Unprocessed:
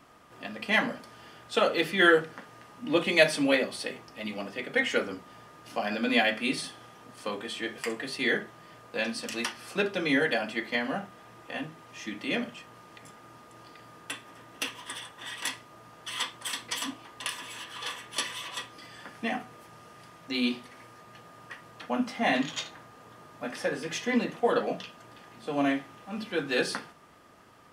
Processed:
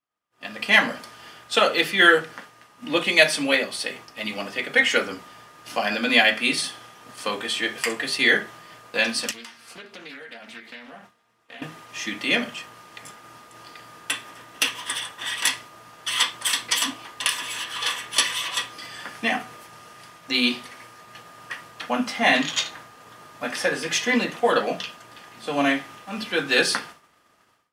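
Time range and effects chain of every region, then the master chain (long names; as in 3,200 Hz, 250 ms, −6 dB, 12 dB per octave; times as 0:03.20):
0:09.31–0:11.62: tuned comb filter 230 Hz, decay 0.17 s, mix 70% + downward compressor 12 to 1, threshold −44 dBFS + highs frequency-modulated by the lows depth 0.29 ms
whole clip: automatic gain control gain up to 9.5 dB; downward expander −38 dBFS; tilt shelving filter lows −4.5 dB, about 910 Hz; level −2 dB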